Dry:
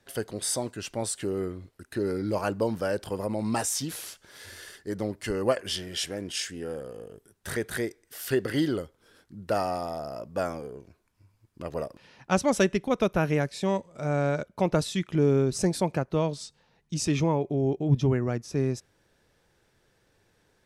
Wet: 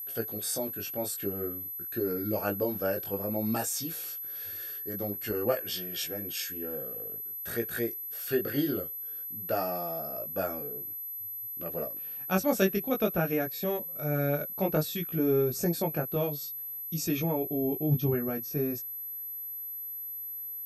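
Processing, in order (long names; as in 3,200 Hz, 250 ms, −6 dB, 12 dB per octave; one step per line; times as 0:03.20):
notch comb filter 1,000 Hz
chorus effect 0.52 Hz, delay 17 ms, depth 3.9 ms
steady tone 12,000 Hz −36 dBFS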